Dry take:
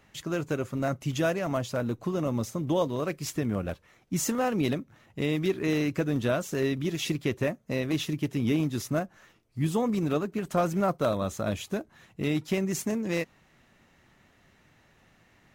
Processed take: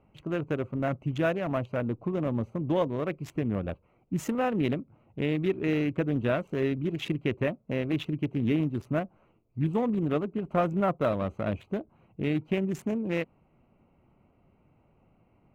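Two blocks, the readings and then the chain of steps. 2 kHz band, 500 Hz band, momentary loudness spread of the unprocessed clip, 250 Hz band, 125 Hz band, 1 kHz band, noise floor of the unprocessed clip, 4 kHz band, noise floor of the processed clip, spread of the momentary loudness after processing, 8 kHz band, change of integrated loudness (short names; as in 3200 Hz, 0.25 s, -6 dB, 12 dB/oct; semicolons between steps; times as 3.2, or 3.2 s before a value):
-1.5 dB, -0.5 dB, 6 LU, 0.0 dB, 0.0 dB, -0.5 dB, -63 dBFS, -5.5 dB, -66 dBFS, 7 LU, under -15 dB, -0.5 dB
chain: Wiener smoothing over 25 samples; resonant high shelf 3700 Hz -9.5 dB, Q 1.5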